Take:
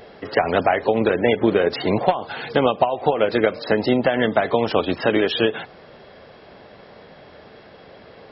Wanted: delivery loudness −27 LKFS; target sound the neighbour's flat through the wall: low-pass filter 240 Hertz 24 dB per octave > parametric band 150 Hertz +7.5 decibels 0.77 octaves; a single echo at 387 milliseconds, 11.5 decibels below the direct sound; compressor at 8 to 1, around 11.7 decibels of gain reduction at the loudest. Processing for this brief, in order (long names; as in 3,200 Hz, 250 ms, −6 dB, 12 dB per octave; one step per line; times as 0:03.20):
downward compressor 8 to 1, threshold −25 dBFS
low-pass filter 240 Hz 24 dB per octave
parametric band 150 Hz +7.5 dB 0.77 octaves
single-tap delay 387 ms −11.5 dB
level +11 dB